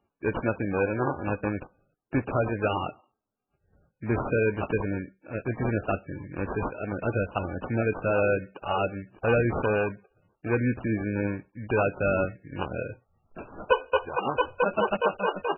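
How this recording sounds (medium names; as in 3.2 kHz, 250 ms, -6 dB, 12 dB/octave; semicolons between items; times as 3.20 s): aliases and images of a low sample rate 2 kHz, jitter 0%; MP3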